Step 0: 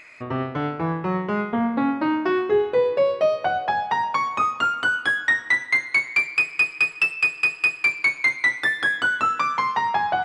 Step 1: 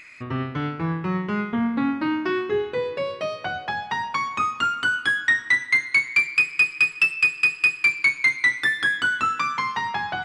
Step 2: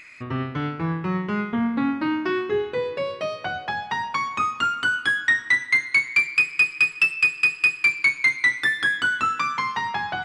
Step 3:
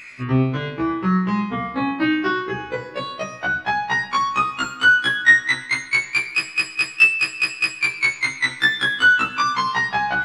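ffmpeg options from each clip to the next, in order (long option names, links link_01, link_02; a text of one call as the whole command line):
ffmpeg -i in.wav -af "equalizer=frequency=640:width=0.93:gain=-12,volume=2.5dB" out.wav
ffmpeg -i in.wav -af anull out.wav
ffmpeg -i in.wav -af "afftfilt=real='re*1.73*eq(mod(b,3),0)':imag='im*1.73*eq(mod(b,3),0)':win_size=2048:overlap=0.75,volume=8dB" out.wav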